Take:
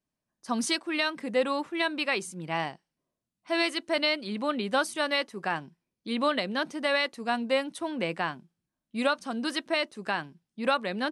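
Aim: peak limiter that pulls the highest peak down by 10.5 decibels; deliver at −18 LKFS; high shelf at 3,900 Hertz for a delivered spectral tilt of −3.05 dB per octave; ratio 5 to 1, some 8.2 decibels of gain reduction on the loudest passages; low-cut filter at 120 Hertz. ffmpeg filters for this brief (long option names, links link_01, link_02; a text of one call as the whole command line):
ffmpeg -i in.wav -af "highpass=120,highshelf=frequency=3900:gain=6.5,acompressor=threshold=-29dB:ratio=5,volume=19dB,alimiter=limit=-7dB:level=0:latency=1" out.wav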